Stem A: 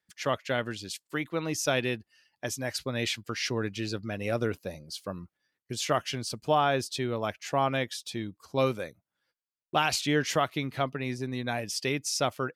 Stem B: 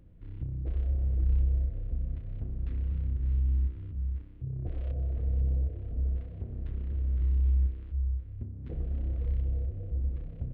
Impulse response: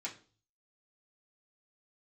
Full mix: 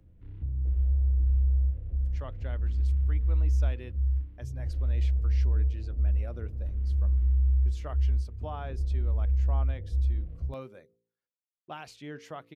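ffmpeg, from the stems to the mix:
-filter_complex "[0:a]highshelf=frequency=2400:gain=-10,bandreject=frequency=56.9:width_type=h:width=4,bandreject=frequency=113.8:width_type=h:width=4,bandreject=frequency=170.7:width_type=h:width=4,bandreject=frequency=227.6:width_type=h:width=4,bandreject=frequency=284.5:width_type=h:width=4,bandreject=frequency=341.4:width_type=h:width=4,bandreject=frequency=398.3:width_type=h:width=4,bandreject=frequency=455.2:width_type=h:width=4,bandreject=frequency=512.1:width_type=h:width=4,adelay=1950,volume=-14dB[link_01];[1:a]equalizer=frequency=67:width_type=o:width=0.39:gain=10,acrossover=split=130|390[link_02][link_03][link_04];[link_02]acompressor=threshold=-20dB:ratio=4[link_05];[link_03]acompressor=threshold=-48dB:ratio=4[link_06];[link_04]acompressor=threshold=-60dB:ratio=4[link_07];[link_05][link_06][link_07]amix=inputs=3:normalize=0,flanger=delay=9.6:depth=9.2:regen=-53:speed=0.45:shape=sinusoidal,volume=1dB[link_08];[link_01][link_08]amix=inputs=2:normalize=0"

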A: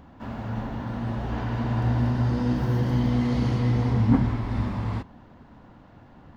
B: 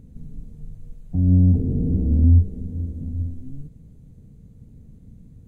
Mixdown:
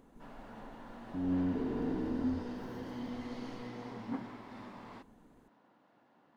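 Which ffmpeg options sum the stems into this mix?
ffmpeg -i stem1.wav -i stem2.wav -filter_complex "[0:a]highpass=290,volume=-13dB[link_01];[1:a]lowshelf=frequency=220:width_type=q:width=1.5:gain=-13.5,volume=-5.5dB[link_02];[link_01][link_02]amix=inputs=2:normalize=0,equalizer=frequency=79:width=3:gain=-14.5" out.wav

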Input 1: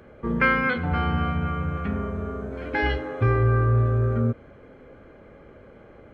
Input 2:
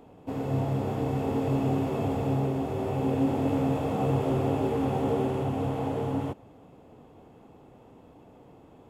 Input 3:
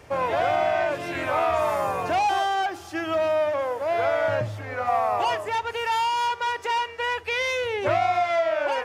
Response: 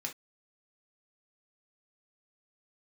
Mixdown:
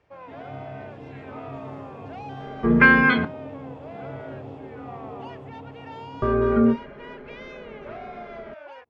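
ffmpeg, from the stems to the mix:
-filter_complex "[0:a]aecho=1:1:4.9:0.8,adelay=2400,volume=2dB,asplit=3[link_01][link_02][link_03];[link_01]atrim=end=3.25,asetpts=PTS-STARTPTS,afade=type=out:start_time=3.246:duration=0.004:curve=hsin[link_04];[link_02]atrim=start=3.25:end=6.22,asetpts=PTS-STARTPTS,volume=0[link_05];[link_03]atrim=start=6.22,asetpts=PTS-STARTPTS,afade=type=in:duration=0.004:curve=hsin[link_06];[link_04][link_05][link_06]concat=n=3:v=0:a=1,asplit=2[link_07][link_08];[link_08]volume=-4.5dB[link_09];[1:a]agate=range=-33dB:threshold=-42dB:ratio=3:detection=peak,volume=-12.5dB[link_10];[2:a]volume=-17.5dB[link_11];[3:a]atrim=start_sample=2205[link_12];[link_09][link_12]afir=irnorm=-1:irlink=0[link_13];[link_07][link_10][link_11][link_13]amix=inputs=4:normalize=0,lowpass=3800"

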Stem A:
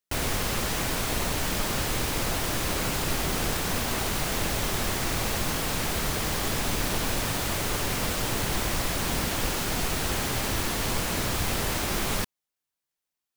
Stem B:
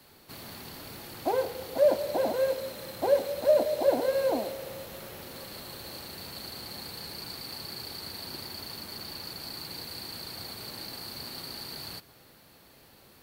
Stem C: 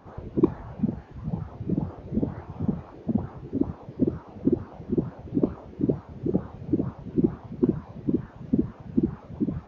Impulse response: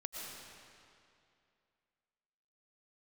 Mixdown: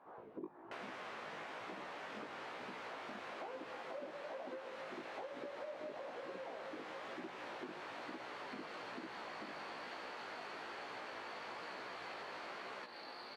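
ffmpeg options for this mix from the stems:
-filter_complex "[0:a]adelay=600,volume=-3dB[link_01];[1:a]alimiter=limit=-22.5dB:level=0:latency=1:release=171,adelay=2150,volume=2.5dB[link_02];[2:a]volume=-4.5dB,asplit=2[link_03][link_04];[link_04]volume=-11.5dB[link_05];[3:a]atrim=start_sample=2205[link_06];[link_05][link_06]afir=irnorm=-1:irlink=0[link_07];[link_01][link_02][link_03][link_07]amix=inputs=4:normalize=0,flanger=delay=15.5:depth=4:speed=1.1,highpass=520,lowpass=2100,acompressor=threshold=-45dB:ratio=6"

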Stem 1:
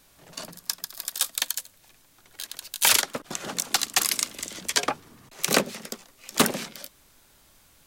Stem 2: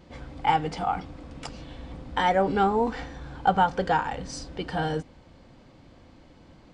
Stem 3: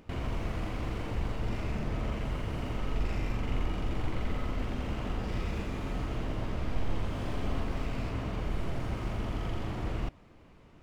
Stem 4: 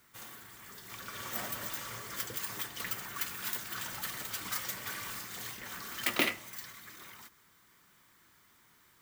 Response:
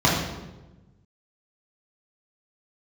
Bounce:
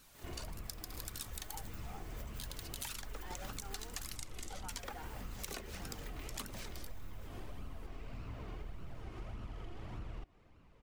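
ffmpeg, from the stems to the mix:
-filter_complex "[0:a]acompressor=threshold=-26dB:ratio=4,volume=0dB[link_01];[1:a]adelay=1050,volume=-15.5dB[link_02];[2:a]adelay=150,volume=-4dB[link_03];[3:a]acompressor=threshold=-40dB:ratio=4,aecho=1:1:4.7:0.74,volume=-16dB,asplit=3[link_04][link_05][link_06];[link_04]atrim=end=4.16,asetpts=PTS-STARTPTS,afade=type=out:start_time=4.156:duration=0.004:curve=hsin[link_07];[link_05]atrim=start=4.16:end=4.7,asetpts=PTS-STARTPTS,volume=0[link_08];[link_06]atrim=start=4.7,asetpts=PTS-STARTPTS,afade=type=in:duration=0.004:curve=hsin[link_09];[link_07][link_08][link_09]concat=n=3:v=0:a=1[link_10];[link_01][link_02][link_03]amix=inputs=3:normalize=0,flanger=delay=0.7:depth=2.1:regen=41:speed=1.7:shape=sinusoidal,acompressor=threshold=-41dB:ratio=6,volume=0dB[link_11];[link_10][link_11]amix=inputs=2:normalize=0"

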